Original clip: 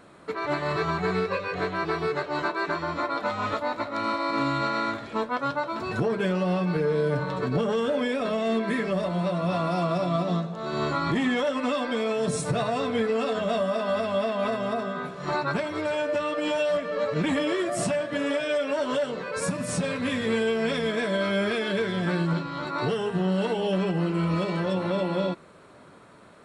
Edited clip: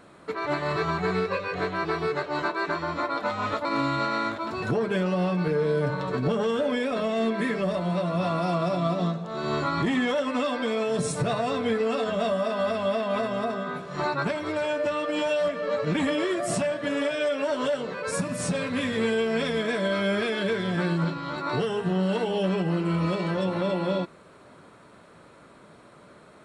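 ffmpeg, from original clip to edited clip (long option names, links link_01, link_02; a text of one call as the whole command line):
ffmpeg -i in.wav -filter_complex "[0:a]asplit=3[link_01][link_02][link_03];[link_01]atrim=end=3.652[link_04];[link_02]atrim=start=4.268:end=5.002[link_05];[link_03]atrim=start=5.668[link_06];[link_04][link_05]acrossfade=duration=0.004:curve1=hsin:curve2=hsin[link_07];[link_07][link_06]acrossfade=duration=0.004:curve1=hsin:curve2=hsin" out.wav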